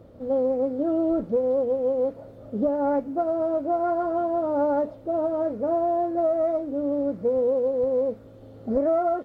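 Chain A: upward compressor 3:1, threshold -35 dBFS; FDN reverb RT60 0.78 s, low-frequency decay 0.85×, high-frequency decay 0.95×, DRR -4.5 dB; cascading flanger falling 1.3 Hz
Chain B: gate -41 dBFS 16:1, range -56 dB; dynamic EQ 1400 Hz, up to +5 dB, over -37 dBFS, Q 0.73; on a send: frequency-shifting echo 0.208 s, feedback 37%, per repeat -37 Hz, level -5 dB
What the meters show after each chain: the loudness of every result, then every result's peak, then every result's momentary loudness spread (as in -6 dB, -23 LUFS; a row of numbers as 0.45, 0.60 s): -23.5, -22.0 LUFS; -8.0, -10.0 dBFS; 8, 4 LU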